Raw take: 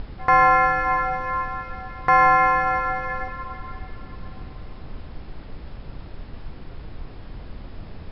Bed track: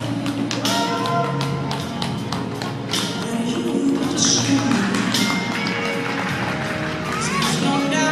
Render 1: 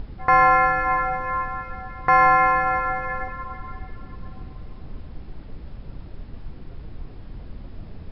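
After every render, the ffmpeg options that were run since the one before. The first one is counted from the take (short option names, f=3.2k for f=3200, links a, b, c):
-af "afftdn=nr=6:nf=-40"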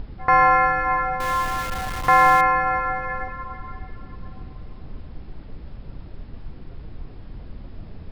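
-filter_complex "[0:a]asettb=1/sr,asplit=3[a][b][c];[a]atrim=end=1.204[d];[b]atrim=start=1.2:end=2.41,asetpts=PTS-STARTPTS,afade=t=in:d=0.004:c=qsin,afade=t=out:st=1.206:d=0.004:c=qsin,aeval=exprs='val(0)+0.5*0.0501*sgn(val(0))':c=same[e];[c]atrim=start=2.406[f];[d][e]acrossfade=d=0.004:c1=hsin:c2=qsin[g];[g][f]acrossfade=d=0.004:c1=qsin:c2=hsin"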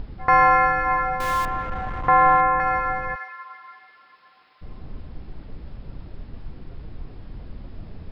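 -filter_complex "[0:a]asettb=1/sr,asplit=3[a][b][c];[a]atrim=end=1.454[d];[b]atrim=start=1.45:end=2.6,asetpts=PTS-STARTPTS,afade=t=in:d=0.004:c=qsin,afade=t=out:st=1.146:d=0.004:c=qsin,lowpass=1.6k[e];[c]atrim=start=2.596[f];[d][e]acrossfade=d=0.004:c1=hsin:c2=qsin[g];[g][f]acrossfade=d=0.004:c1=qsin:c2=hsin,asplit=3[h][i][j];[h]afade=t=out:st=3.14:d=0.02[k];[i]highpass=1.3k,afade=t=in:st=3.14:d=0.02,afade=t=out:st=4.61:d=0.02[l];[j]afade=t=in:st=4.61:d=0.02[m];[k][l][m]amix=inputs=3:normalize=0"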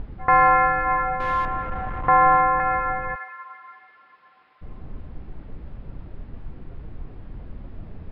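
-af "lowpass=2.5k"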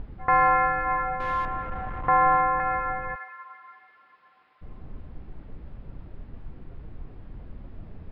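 -af "volume=-4dB"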